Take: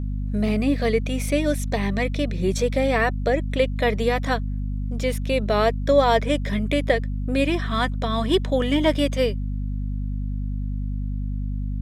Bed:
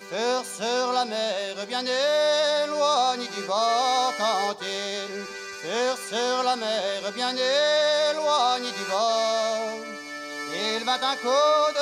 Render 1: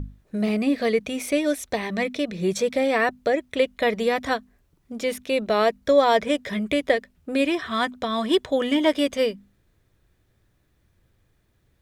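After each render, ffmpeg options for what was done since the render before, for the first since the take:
-af "bandreject=f=50:t=h:w=6,bandreject=f=100:t=h:w=6,bandreject=f=150:t=h:w=6,bandreject=f=200:t=h:w=6,bandreject=f=250:t=h:w=6"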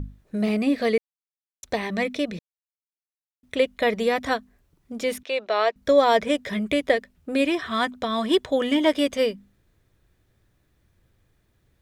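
-filter_complex "[0:a]asettb=1/sr,asplit=3[a][b][c];[a]atrim=end=5.234[d];[b]atrim=start=5.23:end=5.76,asetpts=PTS-STARTPTS,afade=t=in:d=0.004:c=qsin,afade=t=out:st=0.526:d=0.004:c=qsin,acrossover=split=430 6100:gain=0.0708 1 0.1[e][f][g];[e][f][g]amix=inputs=3:normalize=0[h];[c]atrim=start=5.756[i];[d][h]acrossfade=d=0.004:c1=hsin:c2=qsin[j];[j][i]acrossfade=d=0.004:c1=qsin:c2=hsin,asplit=5[k][l][m][n][o];[k]atrim=end=0.98,asetpts=PTS-STARTPTS,afade=t=out:st=0.976:d=0.004:c=hsin[p];[l]atrim=start=0.98:end=1.63,asetpts=PTS-STARTPTS,volume=0[q];[m]atrim=start=1.63:end=2.39,asetpts=PTS-STARTPTS,afade=t=in:d=0.004:c=hsin,afade=t=out:st=0.756:d=0.004:c=hsin[r];[n]atrim=start=2.39:end=3.43,asetpts=PTS-STARTPTS,volume=0[s];[o]atrim=start=3.43,asetpts=PTS-STARTPTS,afade=t=in:d=0.004:c=hsin[t];[p][q][r][s][t]concat=n=5:v=0:a=1"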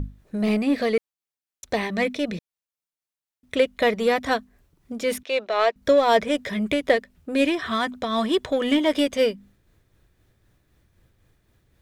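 -filter_complex "[0:a]asplit=2[a][b];[b]asoftclip=type=tanh:threshold=-24dB,volume=-4.5dB[c];[a][c]amix=inputs=2:normalize=0,tremolo=f=3.9:d=0.36"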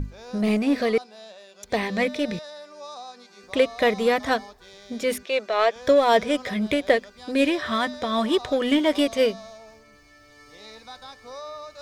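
-filter_complex "[1:a]volume=-17.5dB[a];[0:a][a]amix=inputs=2:normalize=0"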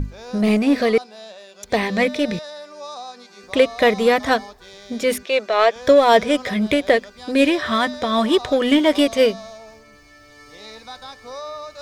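-af "volume=5dB,alimiter=limit=-3dB:level=0:latency=1"

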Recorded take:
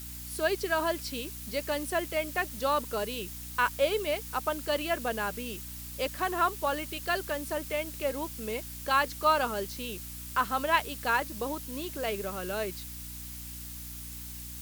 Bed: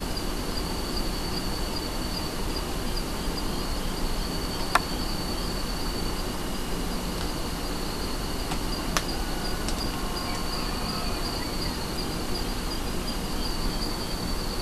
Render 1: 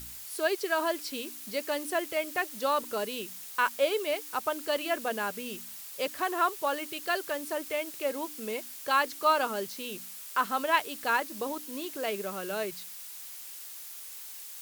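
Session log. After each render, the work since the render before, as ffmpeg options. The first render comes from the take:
-af "bandreject=f=60:t=h:w=4,bandreject=f=120:t=h:w=4,bandreject=f=180:t=h:w=4,bandreject=f=240:t=h:w=4,bandreject=f=300:t=h:w=4"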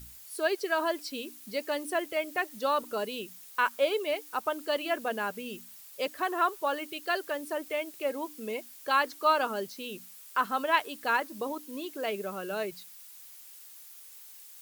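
-af "afftdn=nr=8:nf=-44"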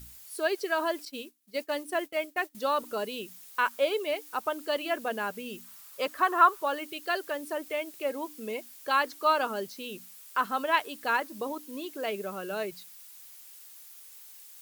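-filter_complex "[0:a]asettb=1/sr,asplit=3[a][b][c];[a]atrim=end=1.054[d];[b]atrim=start=1.05:end=2.55,asetpts=PTS-STARTPTS,afade=t=in:d=0.004:c=qsin,afade=t=out:st=1.496:d=0.004:c=qsin,agate=range=-33dB:threshold=-35dB:ratio=3:release=100:detection=peak[e];[c]atrim=start=2.546[f];[d][e]acrossfade=d=0.004:c1=hsin:c2=qsin[g];[g][f]acrossfade=d=0.004:c1=qsin:c2=hsin,asettb=1/sr,asplit=3[h][i][j];[h]atrim=end=5.644[k];[i]atrim=start=5.64:end=6.63,asetpts=PTS-STARTPTS,afade=t=in:d=0.004:c=qsin,afade=t=out:st=0.986:d=0.004:c=qsin,equalizer=f=1.2k:t=o:w=0.8:g=9.5[l];[j]atrim=start=6.626[m];[k][l]acrossfade=d=0.004:c1=hsin:c2=qsin[n];[n][m]acrossfade=d=0.004:c1=qsin:c2=hsin"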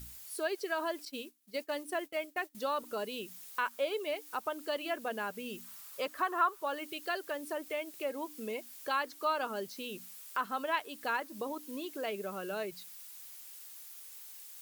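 -af "acompressor=threshold=-41dB:ratio=1.5"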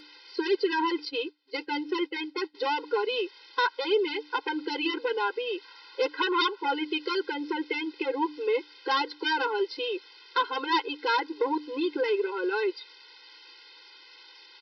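-af "aresample=11025,aeval=exprs='0.126*sin(PI/2*3.55*val(0)/0.126)':c=same,aresample=44100,afftfilt=real='re*eq(mod(floor(b*sr/1024/270),2),1)':imag='im*eq(mod(floor(b*sr/1024/270),2),1)':win_size=1024:overlap=0.75"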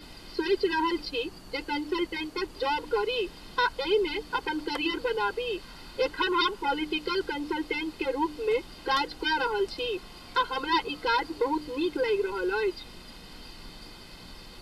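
-filter_complex "[1:a]volume=-18dB[a];[0:a][a]amix=inputs=2:normalize=0"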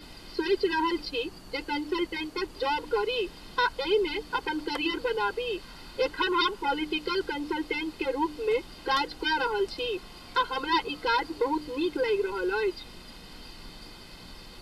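-af anull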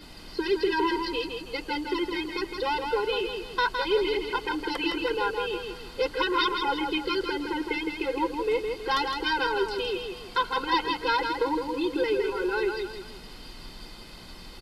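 -af "aecho=1:1:162|324|486|648|810:0.531|0.202|0.0767|0.0291|0.0111"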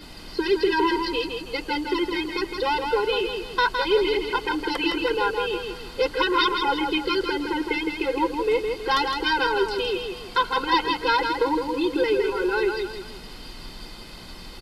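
-af "volume=4dB"

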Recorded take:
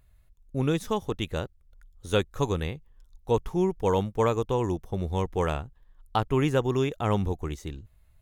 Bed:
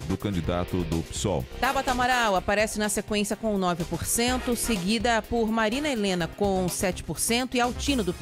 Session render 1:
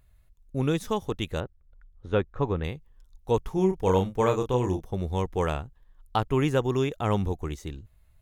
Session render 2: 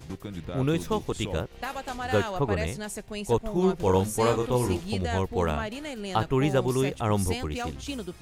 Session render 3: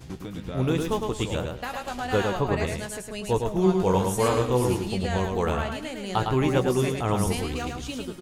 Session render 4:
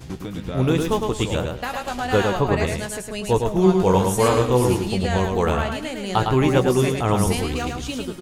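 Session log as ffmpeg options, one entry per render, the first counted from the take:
-filter_complex "[0:a]asettb=1/sr,asplit=3[a][b][c];[a]atrim=end=1.404[d];[b]atrim=start=1.4:end=2.64,asetpts=PTS-STARTPTS,afade=t=in:d=0.004:c=qsin,afade=t=out:st=1.236:d=0.004:c=qsin,lowpass=1.9k[e];[c]atrim=start=2.636[f];[d][e]acrossfade=d=0.004:c1=hsin:c2=qsin[g];[g][f]acrossfade=d=0.004:c1=qsin:c2=hsin,asettb=1/sr,asplit=3[h][i][j];[h]atrim=end=3.544[k];[i]atrim=start=3.54:end=4.84,asetpts=PTS-STARTPTS,afade=t=in:d=0.004:c=qsin,afade=t=out:st=1.296:d=0.004:c=qsin,asplit=2[l][m];[m]adelay=32,volume=-6dB[n];[l][n]amix=inputs=2:normalize=0,atrim=end_sample=57330[o];[j]atrim=start=4.836[p];[k][o]acrossfade=d=0.004:c1=hsin:c2=qsin[q];[q][p]acrossfade=d=0.004:c1=qsin:c2=hsin"
-filter_complex "[1:a]volume=-9.5dB[a];[0:a][a]amix=inputs=2:normalize=0"
-filter_complex "[0:a]asplit=2[a][b];[b]adelay=16,volume=-10.5dB[c];[a][c]amix=inputs=2:normalize=0,aecho=1:1:108|216|324:0.596|0.125|0.0263"
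-af "volume=5dB"

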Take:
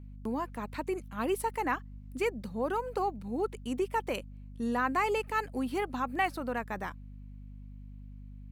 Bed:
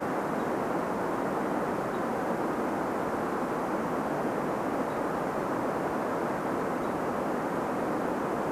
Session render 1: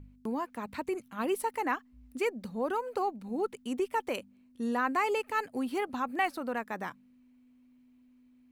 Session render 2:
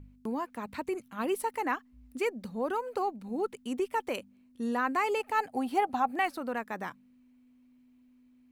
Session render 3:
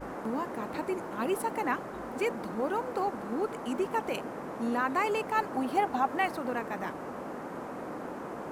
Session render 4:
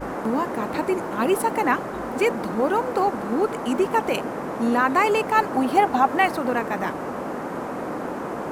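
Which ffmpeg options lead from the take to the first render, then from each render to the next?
-af "bandreject=f=50:t=h:w=4,bandreject=f=100:t=h:w=4,bandreject=f=150:t=h:w=4,bandreject=f=200:t=h:w=4"
-filter_complex "[0:a]asettb=1/sr,asplit=3[a][b][c];[a]atrim=end=5.204[d];[b]atrim=start=5.2:end=6.19,asetpts=PTS-STARTPTS,afade=t=in:d=0.004:c=qsin,afade=t=out:st=0.986:d=0.004:c=qsin,equalizer=f=770:w=4.8:g=13.5[e];[c]atrim=start=6.186[f];[d][e]acrossfade=d=0.004:c1=hsin:c2=qsin[g];[g][f]acrossfade=d=0.004:c1=qsin:c2=hsin"
-filter_complex "[1:a]volume=-9dB[a];[0:a][a]amix=inputs=2:normalize=0"
-af "volume=9.5dB"

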